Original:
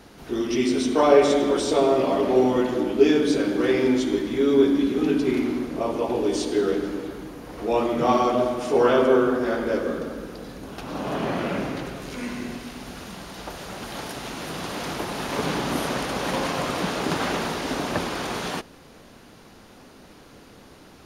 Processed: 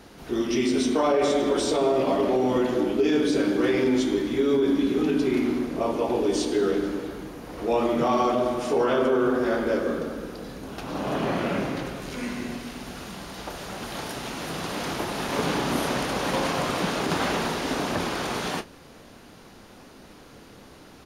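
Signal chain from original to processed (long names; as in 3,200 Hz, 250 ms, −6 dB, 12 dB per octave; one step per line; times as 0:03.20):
brickwall limiter −14 dBFS, peak gain reduction 10 dB
double-tracking delay 30 ms −12.5 dB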